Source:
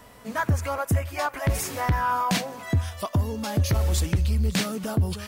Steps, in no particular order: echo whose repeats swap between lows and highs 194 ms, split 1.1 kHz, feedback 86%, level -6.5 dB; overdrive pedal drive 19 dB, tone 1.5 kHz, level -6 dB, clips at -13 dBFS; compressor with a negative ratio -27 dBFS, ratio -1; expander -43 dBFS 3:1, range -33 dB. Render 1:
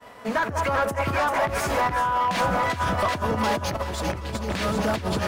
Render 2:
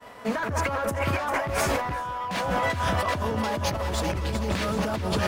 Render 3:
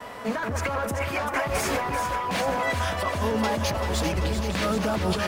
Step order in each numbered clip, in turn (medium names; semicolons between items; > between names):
expander > echo whose repeats swap between lows and highs > compressor with a negative ratio > overdrive pedal; expander > overdrive pedal > echo whose repeats swap between lows and highs > compressor with a negative ratio; overdrive pedal > expander > compressor with a negative ratio > echo whose repeats swap between lows and highs